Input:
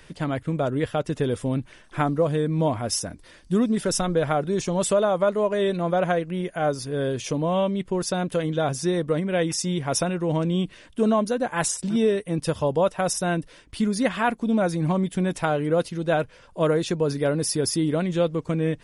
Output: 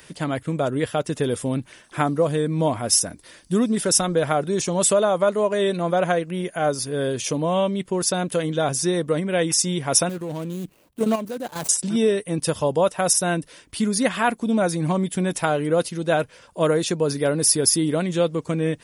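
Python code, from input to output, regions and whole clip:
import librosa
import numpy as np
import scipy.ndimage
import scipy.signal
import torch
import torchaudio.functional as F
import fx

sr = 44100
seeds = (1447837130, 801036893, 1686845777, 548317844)

y = fx.chain(x, sr, fx.median_filter(points=25),
    fx.high_shelf(hz=6900.0, db=7.0),
    fx.level_steps(step_db=10), at=(10.09, 11.69))
y = fx.highpass(y, sr, hz=120.0, slope=6)
y = fx.high_shelf(y, sr, hz=7000.0, db=12.0)
y = y * librosa.db_to_amplitude(2.0)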